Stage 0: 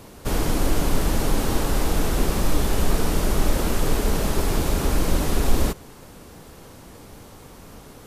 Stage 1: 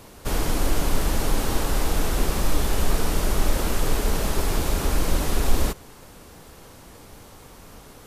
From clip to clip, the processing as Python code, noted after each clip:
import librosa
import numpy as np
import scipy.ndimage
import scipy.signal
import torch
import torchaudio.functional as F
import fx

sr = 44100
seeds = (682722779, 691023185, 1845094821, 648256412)

y = fx.peak_eq(x, sr, hz=200.0, db=-4.0, octaves=2.9)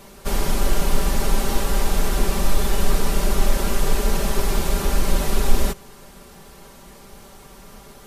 y = x + 0.7 * np.pad(x, (int(5.1 * sr / 1000.0), 0))[:len(x)]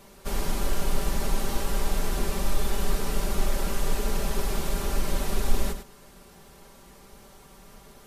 y = x + 10.0 ** (-9.5 / 20.0) * np.pad(x, (int(101 * sr / 1000.0), 0))[:len(x)]
y = F.gain(torch.from_numpy(y), -7.0).numpy()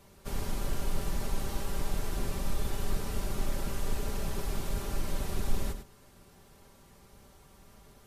y = fx.octave_divider(x, sr, octaves=1, level_db=0.0)
y = F.gain(torch.from_numpy(y), -7.5).numpy()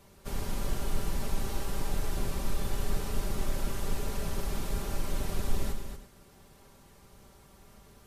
y = x + 10.0 ** (-8.0 / 20.0) * np.pad(x, (int(237 * sr / 1000.0), 0))[:len(x)]